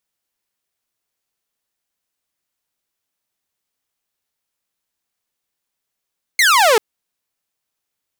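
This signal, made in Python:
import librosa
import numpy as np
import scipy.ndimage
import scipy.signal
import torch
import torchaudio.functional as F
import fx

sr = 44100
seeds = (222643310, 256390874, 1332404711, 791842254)

y = fx.laser_zap(sr, level_db=-7.0, start_hz=2200.0, end_hz=410.0, length_s=0.39, wave='saw')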